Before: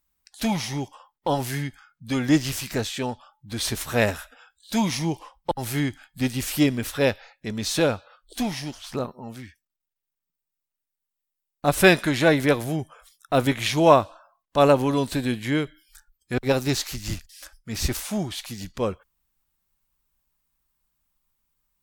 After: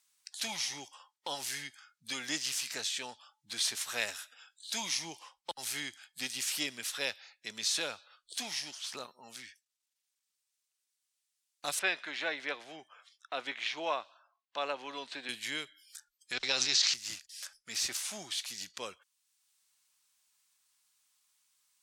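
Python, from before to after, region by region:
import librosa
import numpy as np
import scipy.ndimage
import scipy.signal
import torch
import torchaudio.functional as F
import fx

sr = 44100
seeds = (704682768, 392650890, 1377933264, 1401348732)

y = fx.chain(x, sr, fx.bandpass_edges(low_hz=260.0, high_hz=2400.0),
    fx.peak_eq(hz=750.0, db=2.0, octaves=0.27), at=(11.79, 15.29))
y = fx.chain(y, sr, fx.lowpass(hz=5700.0, slope=24),
    fx.high_shelf(hz=2500.0, db=10.0),
    fx.sustainer(db_per_s=30.0), at=(16.32, 16.94))
y = scipy.signal.sosfilt(scipy.signal.butter(2, 6500.0, 'lowpass', fs=sr, output='sos'), y)
y = np.diff(y, prepend=0.0)
y = fx.band_squash(y, sr, depth_pct=40)
y = F.gain(torch.from_numpy(y), 3.5).numpy()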